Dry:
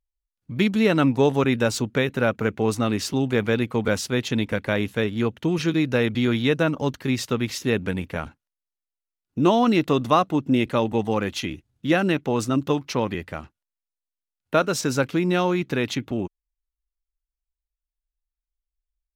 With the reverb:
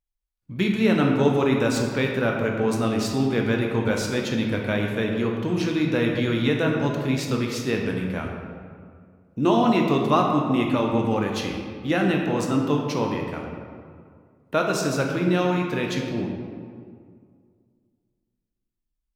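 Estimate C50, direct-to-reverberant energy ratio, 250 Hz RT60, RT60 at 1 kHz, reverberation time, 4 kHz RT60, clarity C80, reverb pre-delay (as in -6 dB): 3.0 dB, 0.5 dB, 2.3 s, 2.0 s, 2.1 s, 1.1 s, 4.0 dB, 12 ms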